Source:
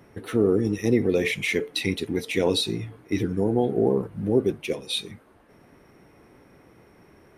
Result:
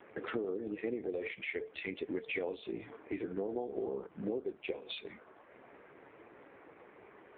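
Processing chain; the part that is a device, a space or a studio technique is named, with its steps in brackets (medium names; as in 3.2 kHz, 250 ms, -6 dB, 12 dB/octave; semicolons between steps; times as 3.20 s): voicemail (band-pass 400–2800 Hz; compression 12:1, threshold -37 dBFS, peak gain reduction 18 dB; trim +4.5 dB; AMR-NB 5.15 kbps 8 kHz)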